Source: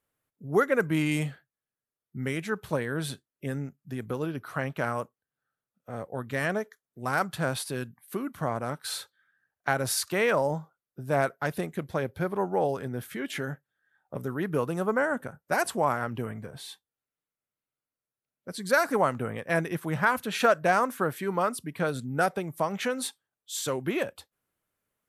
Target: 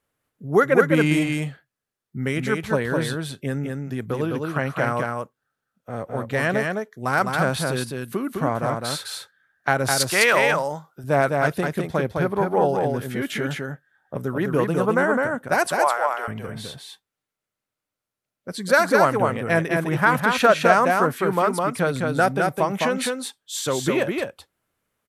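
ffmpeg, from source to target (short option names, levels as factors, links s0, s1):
-filter_complex "[0:a]asettb=1/sr,asplit=3[s0][s1][s2];[s0]atrim=end=10.004[s3];[s1]atrim=start=10:end=11.04,asetpts=PTS-STARTPTS,afade=t=in:d=0.004:c=qsin,afade=t=out:st=1.036:d=0.004:c=qsin,tiltshelf=f=810:g=-7[s4];[s2]atrim=start=11.036[s5];[s3][s4]acrossfade=d=0.004:c1=hsin:c2=qsin[s6];[s6][s5]acrossfade=d=0.004:c1=qsin:c2=hsin,asettb=1/sr,asplit=3[s7][s8][s9];[s7]atrim=end=15.674[s10];[s8]atrim=start=15.67:end=16.28,asetpts=PTS-STARTPTS,afade=t=in:d=0.004:c=qsin,afade=t=out:st=0.606:d=0.004:c=qsin,highpass=f=540:w=0.5412,highpass=f=540:w=1.3066[s11];[s9]atrim=start=16.276[s12];[s10][s11]acrossfade=d=0.004:c1=hsin:c2=qsin[s13];[s13][s12]acrossfade=d=0.004:c1=qsin:c2=hsin,highshelf=f=11000:g=-7.5,aecho=1:1:208:0.668,volume=2"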